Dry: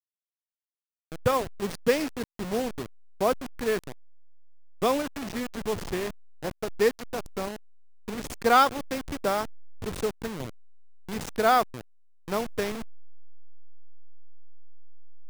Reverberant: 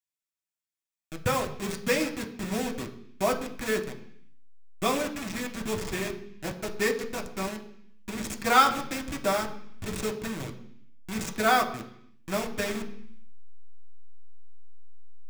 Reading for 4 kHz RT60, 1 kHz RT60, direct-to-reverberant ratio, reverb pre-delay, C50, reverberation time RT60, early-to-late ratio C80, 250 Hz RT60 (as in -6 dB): 0.80 s, 0.65 s, 2.0 dB, 3 ms, 11.5 dB, 0.65 s, 14.5 dB, 0.85 s